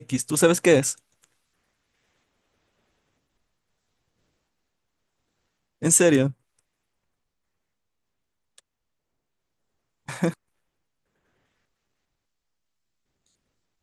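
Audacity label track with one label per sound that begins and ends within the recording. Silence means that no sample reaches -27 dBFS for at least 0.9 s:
5.830000	6.300000	sound
10.090000	10.300000	sound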